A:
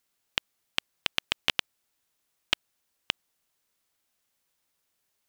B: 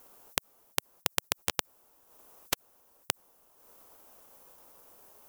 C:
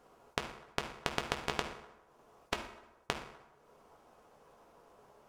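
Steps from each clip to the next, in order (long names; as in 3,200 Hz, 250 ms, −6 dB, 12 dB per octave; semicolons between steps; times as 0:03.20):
octave-band graphic EQ 125/500/1,000/2,000/4,000/8,000 Hz −6/+6/+5/−10/−11/−6 dB; transient designer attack +9 dB, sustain −7 dB; every bin compressed towards the loudest bin 4 to 1
head-to-tape spacing loss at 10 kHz 21 dB; convolution reverb RT60 1.0 s, pre-delay 3 ms, DRR 2.5 dB; level +1 dB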